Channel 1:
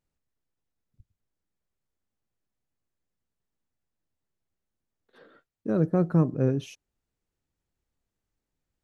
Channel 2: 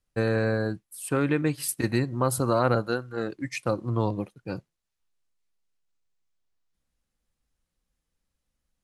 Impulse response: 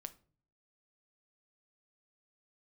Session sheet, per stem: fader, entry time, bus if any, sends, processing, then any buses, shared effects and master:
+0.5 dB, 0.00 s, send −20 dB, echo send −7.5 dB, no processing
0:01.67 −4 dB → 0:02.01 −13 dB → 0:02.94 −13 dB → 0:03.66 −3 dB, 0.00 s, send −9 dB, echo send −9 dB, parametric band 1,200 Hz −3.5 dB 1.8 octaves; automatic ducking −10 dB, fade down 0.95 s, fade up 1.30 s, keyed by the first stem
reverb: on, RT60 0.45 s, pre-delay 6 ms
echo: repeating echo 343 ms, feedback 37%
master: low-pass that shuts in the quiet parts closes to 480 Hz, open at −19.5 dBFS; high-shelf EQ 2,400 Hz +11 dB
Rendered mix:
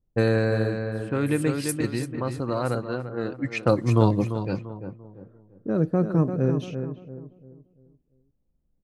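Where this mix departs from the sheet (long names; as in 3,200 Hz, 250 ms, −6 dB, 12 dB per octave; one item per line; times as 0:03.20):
stem 2 −4.0 dB → +5.0 dB
master: missing high-shelf EQ 2,400 Hz +11 dB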